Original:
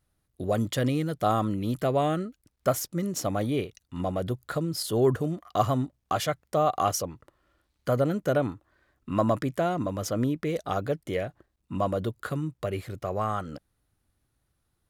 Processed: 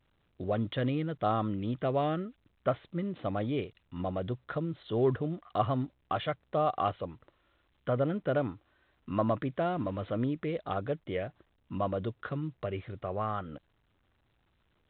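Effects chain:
0:09.61–0:10.17: converter with a step at zero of −42.5 dBFS
level −4.5 dB
A-law companding 64 kbit/s 8,000 Hz

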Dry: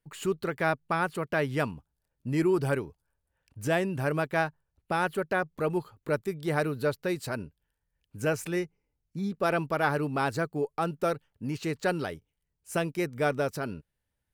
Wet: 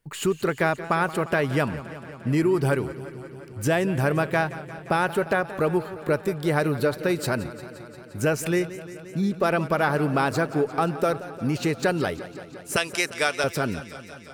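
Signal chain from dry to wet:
0:12.76–0:13.44: meter weighting curve ITU-R 468
downward compressor 3 to 1, threshold −28 dBFS, peak gain reduction 6 dB
feedback echo with a swinging delay time 175 ms, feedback 76%, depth 88 cents, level −15.5 dB
level +8.5 dB

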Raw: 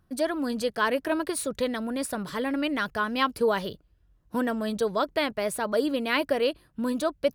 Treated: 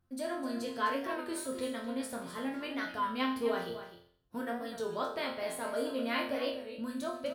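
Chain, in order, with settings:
resonators tuned to a chord F2 sus4, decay 0.56 s
single-tap delay 255 ms −11 dB
wow of a warped record 33 1/3 rpm, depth 100 cents
level +7 dB

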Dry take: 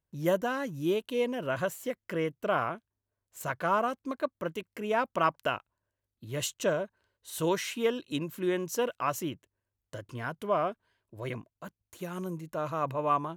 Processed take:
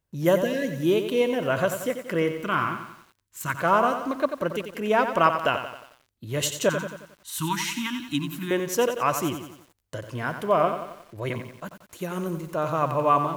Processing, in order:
0:00.45–0:00.69: healed spectral selection 710–1,600 Hz
0:02.41–0:03.54: flat-topped bell 590 Hz −14 dB 1.1 octaves
0:06.69–0:08.51: elliptic band-stop filter 300–930 Hz, stop band 40 dB
feedback echo at a low word length 90 ms, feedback 55%, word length 9 bits, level −8.5 dB
level +6.5 dB

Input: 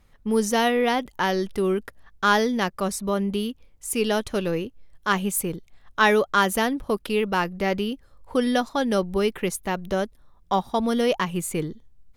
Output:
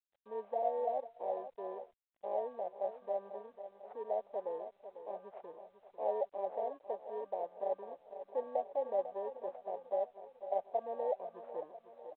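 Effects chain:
samples in bit-reversed order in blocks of 32 samples
on a send: repeating echo 497 ms, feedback 52%, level −11.5 dB
0:00.62–0:02.33: on the sum: noise gate −28 dBFS, range −31 dB
flat-topped band-pass 640 Hz, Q 2.7
level −3 dB
G.726 32 kbit/s 8,000 Hz

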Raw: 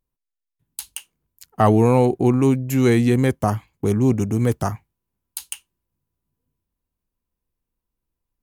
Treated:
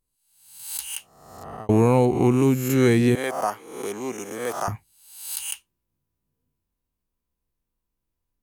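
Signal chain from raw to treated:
peak hold with a rise ahead of every peak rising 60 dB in 0.76 s
0:00.92–0:01.69: fade out
0:03.15–0:04.68: high-pass filter 550 Hz 12 dB per octave
level −2.5 dB

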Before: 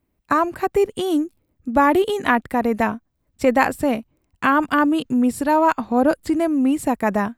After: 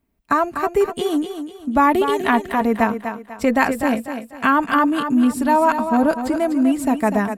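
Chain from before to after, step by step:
notch filter 490 Hz, Q 12
comb filter 4.4 ms, depth 34%
on a send: feedback echo with a high-pass in the loop 247 ms, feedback 37%, high-pass 170 Hz, level −8 dB

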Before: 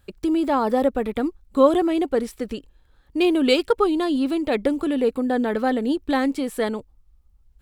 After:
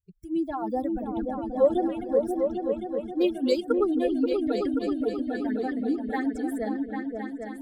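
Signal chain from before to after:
spectral dynamics exaggerated over time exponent 2
all-pass phaser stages 6, 2.9 Hz, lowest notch 270–3,200 Hz
echo whose low-pass opens from repeat to repeat 266 ms, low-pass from 200 Hz, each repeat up 2 octaves, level 0 dB
level −2.5 dB

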